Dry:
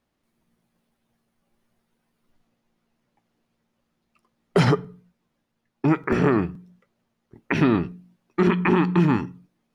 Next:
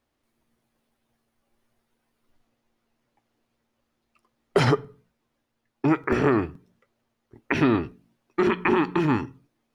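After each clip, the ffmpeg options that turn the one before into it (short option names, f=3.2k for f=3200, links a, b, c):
-af "equalizer=f=180:t=o:w=0.3:g=-14.5"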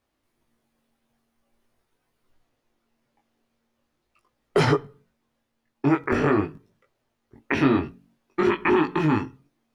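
-af "flanger=delay=19:depth=3.1:speed=0.45,volume=3.5dB"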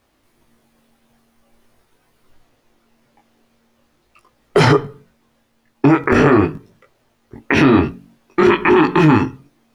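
-af "alimiter=level_in=16dB:limit=-1dB:release=50:level=0:latency=1,volume=-2dB"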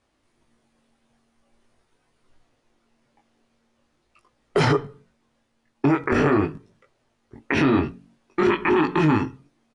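-af "aresample=22050,aresample=44100,volume=-7.5dB"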